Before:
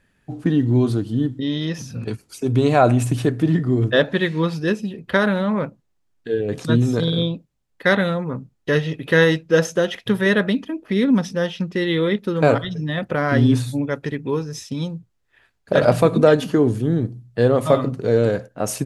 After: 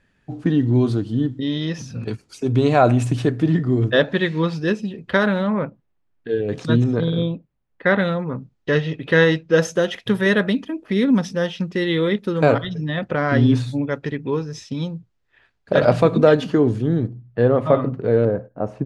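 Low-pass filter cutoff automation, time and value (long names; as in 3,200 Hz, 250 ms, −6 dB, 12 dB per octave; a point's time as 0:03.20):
6,800 Hz
from 0:05.47 2,700 Hz
from 0:06.29 5,800 Hz
from 0:06.84 2,300 Hz
from 0:07.99 5,100 Hz
from 0:09.59 10,000 Hz
from 0:12.45 5,300 Hz
from 0:17.08 2,200 Hz
from 0:18.25 1,000 Hz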